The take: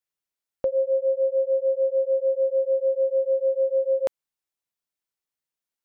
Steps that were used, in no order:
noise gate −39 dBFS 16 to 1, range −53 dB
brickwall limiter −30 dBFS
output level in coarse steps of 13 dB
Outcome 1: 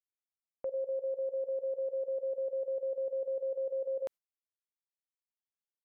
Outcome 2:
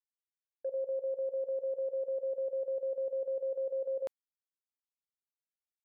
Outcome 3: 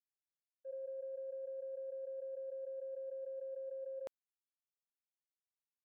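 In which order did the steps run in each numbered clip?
output level in coarse steps, then noise gate, then brickwall limiter
output level in coarse steps, then brickwall limiter, then noise gate
brickwall limiter, then output level in coarse steps, then noise gate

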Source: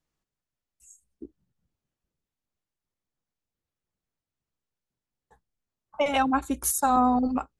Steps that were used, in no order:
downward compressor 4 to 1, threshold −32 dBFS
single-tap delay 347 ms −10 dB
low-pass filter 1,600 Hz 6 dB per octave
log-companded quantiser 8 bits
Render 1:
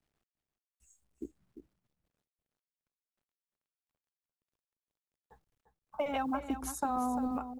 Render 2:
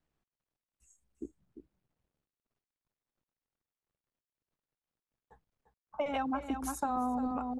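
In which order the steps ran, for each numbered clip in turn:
low-pass filter, then log-companded quantiser, then downward compressor, then single-tap delay
single-tap delay, then log-companded quantiser, then low-pass filter, then downward compressor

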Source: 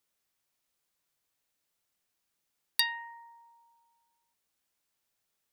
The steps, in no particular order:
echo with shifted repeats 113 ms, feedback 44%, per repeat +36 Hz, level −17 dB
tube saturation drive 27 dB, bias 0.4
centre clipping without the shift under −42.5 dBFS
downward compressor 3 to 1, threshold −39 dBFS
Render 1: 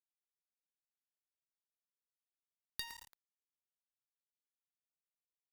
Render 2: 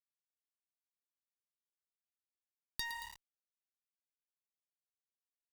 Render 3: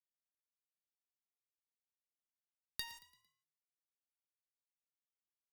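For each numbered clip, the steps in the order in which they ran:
downward compressor, then echo with shifted repeats, then centre clipping without the shift, then tube saturation
echo with shifted repeats, then centre clipping without the shift, then tube saturation, then downward compressor
downward compressor, then centre clipping without the shift, then tube saturation, then echo with shifted repeats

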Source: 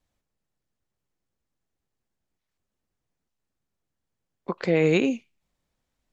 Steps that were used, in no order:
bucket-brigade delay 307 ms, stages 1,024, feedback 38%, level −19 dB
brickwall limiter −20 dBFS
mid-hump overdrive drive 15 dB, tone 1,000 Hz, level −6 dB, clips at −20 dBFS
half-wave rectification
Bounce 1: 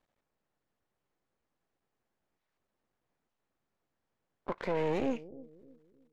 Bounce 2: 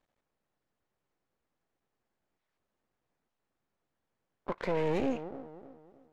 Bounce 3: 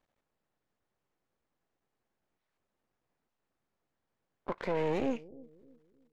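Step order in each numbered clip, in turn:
half-wave rectification, then brickwall limiter, then bucket-brigade delay, then mid-hump overdrive
bucket-brigade delay, then half-wave rectification, then mid-hump overdrive, then brickwall limiter
half-wave rectification, then brickwall limiter, then mid-hump overdrive, then bucket-brigade delay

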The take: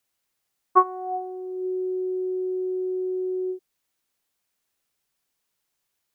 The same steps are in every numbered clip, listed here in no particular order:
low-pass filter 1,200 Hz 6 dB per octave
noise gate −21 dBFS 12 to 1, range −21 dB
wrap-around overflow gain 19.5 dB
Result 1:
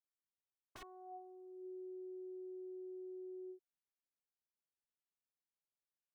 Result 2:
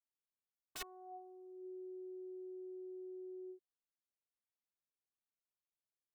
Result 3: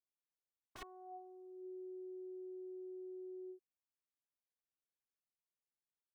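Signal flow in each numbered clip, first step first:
wrap-around overflow, then low-pass filter, then noise gate
low-pass filter, then wrap-around overflow, then noise gate
wrap-around overflow, then noise gate, then low-pass filter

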